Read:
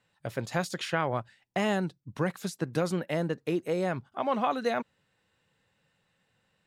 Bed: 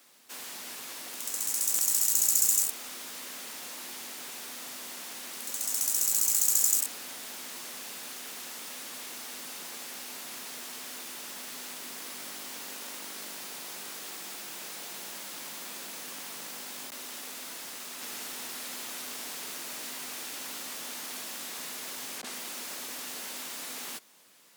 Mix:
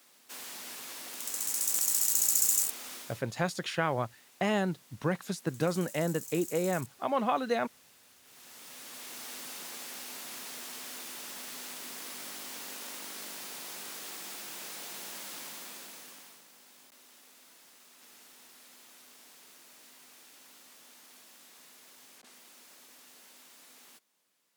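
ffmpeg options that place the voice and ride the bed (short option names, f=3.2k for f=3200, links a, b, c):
-filter_complex "[0:a]adelay=2850,volume=-1dB[a];[1:a]volume=15.5dB,afade=t=out:st=2.95:d=0.28:silence=0.141254,afade=t=in:st=8.23:d=1.06:silence=0.133352,afade=t=out:st=15.34:d=1.1:silence=0.177828[b];[a][b]amix=inputs=2:normalize=0"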